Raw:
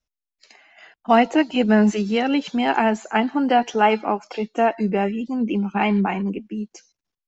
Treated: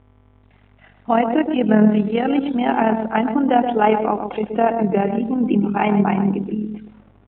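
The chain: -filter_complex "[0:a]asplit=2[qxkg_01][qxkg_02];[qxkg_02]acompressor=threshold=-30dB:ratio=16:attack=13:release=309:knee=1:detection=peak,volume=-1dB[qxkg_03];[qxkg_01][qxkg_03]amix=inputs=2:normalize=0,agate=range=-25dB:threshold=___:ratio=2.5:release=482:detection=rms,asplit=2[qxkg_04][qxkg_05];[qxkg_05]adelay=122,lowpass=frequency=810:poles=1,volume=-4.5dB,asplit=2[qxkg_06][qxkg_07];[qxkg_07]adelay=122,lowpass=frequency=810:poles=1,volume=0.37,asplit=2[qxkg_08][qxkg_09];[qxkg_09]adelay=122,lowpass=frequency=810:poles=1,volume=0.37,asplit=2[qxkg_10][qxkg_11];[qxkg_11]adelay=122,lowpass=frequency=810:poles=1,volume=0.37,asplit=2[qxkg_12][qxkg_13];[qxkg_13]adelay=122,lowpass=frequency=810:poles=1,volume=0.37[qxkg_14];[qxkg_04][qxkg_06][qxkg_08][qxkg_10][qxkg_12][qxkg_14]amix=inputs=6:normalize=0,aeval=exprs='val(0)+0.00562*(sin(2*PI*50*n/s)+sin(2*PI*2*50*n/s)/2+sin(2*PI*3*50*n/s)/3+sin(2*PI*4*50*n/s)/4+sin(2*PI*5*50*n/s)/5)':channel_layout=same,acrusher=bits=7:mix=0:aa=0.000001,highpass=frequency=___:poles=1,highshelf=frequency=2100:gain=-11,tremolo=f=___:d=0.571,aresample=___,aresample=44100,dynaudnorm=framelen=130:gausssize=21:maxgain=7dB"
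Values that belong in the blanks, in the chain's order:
-35dB, 110, 39, 8000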